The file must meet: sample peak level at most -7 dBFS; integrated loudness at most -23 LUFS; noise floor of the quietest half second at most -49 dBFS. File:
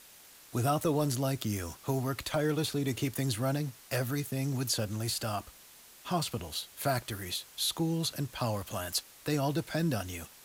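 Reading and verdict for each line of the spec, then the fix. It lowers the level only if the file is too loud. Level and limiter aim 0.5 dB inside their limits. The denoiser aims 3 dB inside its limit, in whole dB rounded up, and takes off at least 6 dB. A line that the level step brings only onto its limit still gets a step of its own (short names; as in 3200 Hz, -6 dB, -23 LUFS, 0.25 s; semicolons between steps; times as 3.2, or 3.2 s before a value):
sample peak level -18.0 dBFS: OK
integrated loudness -32.5 LUFS: OK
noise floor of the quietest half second -55 dBFS: OK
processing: none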